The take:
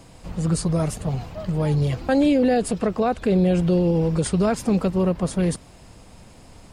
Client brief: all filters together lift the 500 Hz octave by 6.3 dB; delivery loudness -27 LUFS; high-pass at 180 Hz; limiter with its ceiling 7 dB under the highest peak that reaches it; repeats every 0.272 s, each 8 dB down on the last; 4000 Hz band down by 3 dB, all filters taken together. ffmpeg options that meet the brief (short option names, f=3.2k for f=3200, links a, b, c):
-af "highpass=180,equalizer=f=500:t=o:g=7.5,equalizer=f=4k:t=o:g=-4,alimiter=limit=-12.5dB:level=0:latency=1,aecho=1:1:272|544|816|1088|1360:0.398|0.159|0.0637|0.0255|0.0102,volume=-5.5dB"